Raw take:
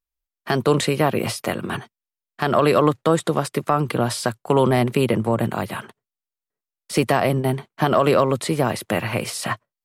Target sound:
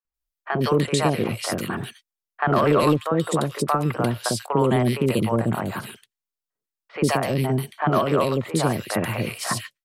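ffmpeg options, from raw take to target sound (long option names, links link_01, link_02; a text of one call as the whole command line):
ffmpeg -i in.wav -filter_complex "[0:a]asettb=1/sr,asplit=3[link_01][link_02][link_03];[link_01]atrim=end=0.714[link_04];[link_02]atrim=start=0.71:end=1.32,asetpts=PTS-STARTPTS,afade=type=in:duration=0.004:curve=qsin,afade=type=out:start_time=0.606:duration=0.004:curve=qsin,lowpass=frequency=11000:width=0.5412,lowpass=frequency=11000:width=1.3066[link_05];[link_03]atrim=start=1.316[link_06];[link_04][link_05]acrossfade=duration=0.004:curve1=hsin:curve2=qsin[link_07];[link_07][link_06]acrossfade=duration=0.004:curve1=qsin:curve2=hsin,asettb=1/sr,asplit=3[link_08][link_09][link_10];[link_08]atrim=end=2.424[link_11];[link_09]atrim=start=2.42:end=2.95,asetpts=PTS-STARTPTS,afade=type=in:duration=0.004:curve=qsin,afade=type=out:start_time=0.526:duration=0.004:curve=qsin,acontrast=47[link_12];[link_10]atrim=start=2.946[link_13];[link_11][link_12]acrossfade=duration=0.004:curve1=hsin:curve2=qsin[link_14];[link_14][link_13]acrossfade=duration=0.004:curve1=qsin:curve2=hsin,acrossover=split=580|2300[link_15][link_16][link_17];[link_15]adelay=50[link_18];[link_17]adelay=140[link_19];[link_18][link_16][link_19]amix=inputs=3:normalize=0,alimiter=limit=-8.5dB:level=0:latency=1:release=377" out.wav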